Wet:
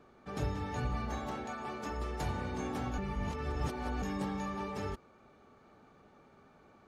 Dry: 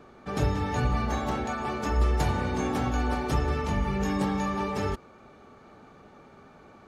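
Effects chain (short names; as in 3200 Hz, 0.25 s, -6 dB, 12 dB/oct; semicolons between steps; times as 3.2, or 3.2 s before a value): 1.27–2.23 low shelf 80 Hz -11.5 dB; 2.98–4.02 reverse; gain -9 dB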